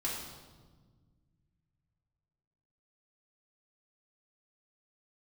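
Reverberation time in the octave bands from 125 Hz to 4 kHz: 3.4, 2.5, 1.6, 1.3, 1.0, 1.1 s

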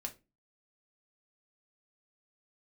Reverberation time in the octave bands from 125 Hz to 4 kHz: 0.45, 0.40, 0.30, 0.20, 0.25, 0.20 s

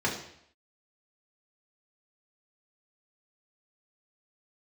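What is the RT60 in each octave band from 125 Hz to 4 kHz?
0.70, 0.65, 0.70, 0.70, 0.70, 0.70 s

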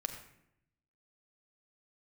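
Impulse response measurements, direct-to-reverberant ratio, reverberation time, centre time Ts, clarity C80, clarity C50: 3.5 dB, 0.75 s, 20 ms, 9.0 dB, 7.5 dB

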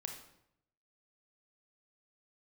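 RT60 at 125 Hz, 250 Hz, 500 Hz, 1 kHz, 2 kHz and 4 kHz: 1.0, 0.85, 0.80, 0.75, 0.65, 0.60 s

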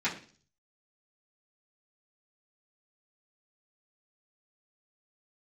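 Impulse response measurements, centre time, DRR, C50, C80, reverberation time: 19 ms, -12.0 dB, 11.0 dB, 15.0 dB, 0.45 s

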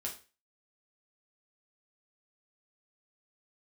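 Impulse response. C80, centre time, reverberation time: 16.0 dB, 19 ms, 0.35 s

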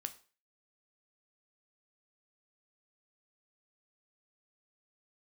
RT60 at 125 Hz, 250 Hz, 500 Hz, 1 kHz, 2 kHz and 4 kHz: 0.35, 0.35, 0.40, 0.40, 0.40, 0.35 s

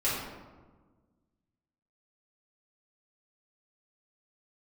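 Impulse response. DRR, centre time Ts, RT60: -10.5 dB, 77 ms, 1.4 s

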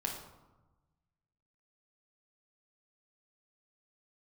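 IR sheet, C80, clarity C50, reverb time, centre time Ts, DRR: 8.0 dB, 5.0 dB, 1.1 s, 34 ms, -1.5 dB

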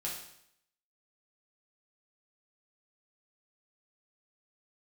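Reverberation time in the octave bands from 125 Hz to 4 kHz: 0.75, 0.70, 0.70, 0.70, 0.70, 0.70 s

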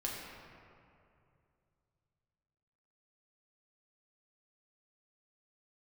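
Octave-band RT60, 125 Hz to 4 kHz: 3.7, 2.7, 2.7, 2.4, 2.1, 1.4 s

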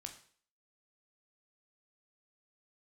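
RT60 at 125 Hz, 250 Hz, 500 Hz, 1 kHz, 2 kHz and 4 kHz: 0.45, 0.50, 0.50, 0.50, 0.50, 0.50 s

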